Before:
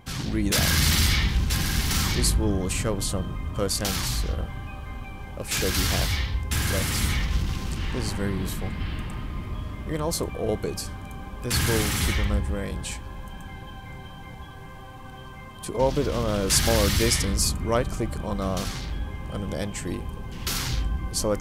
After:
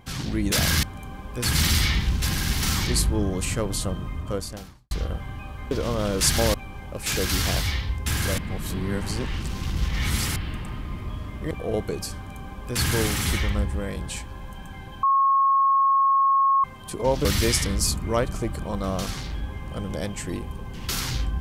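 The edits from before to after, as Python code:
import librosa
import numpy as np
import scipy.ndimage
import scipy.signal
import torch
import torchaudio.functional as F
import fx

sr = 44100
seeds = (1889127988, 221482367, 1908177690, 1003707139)

y = fx.studio_fade_out(x, sr, start_s=3.38, length_s=0.81)
y = fx.edit(y, sr, fx.reverse_span(start_s=6.83, length_s=1.98),
    fx.cut(start_s=9.96, length_s=0.3),
    fx.duplicate(start_s=10.91, length_s=0.72, to_s=0.83),
    fx.bleep(start_s=13.78, length_s=1.61, hz=1090.0, db=-16.0),
    fx.move(start_s=16.0, length_s=0.83, to_s=4.99), tone=tone)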